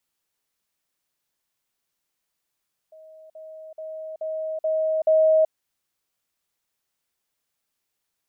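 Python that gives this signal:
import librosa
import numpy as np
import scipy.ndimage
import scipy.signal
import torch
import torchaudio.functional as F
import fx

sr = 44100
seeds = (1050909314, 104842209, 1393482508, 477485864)

y = fx.level_ladder(sr, hz=632.0, from_db=-44.0, step_db=6.0, steps=6, dwell_s=0.38, gap_s=0.05)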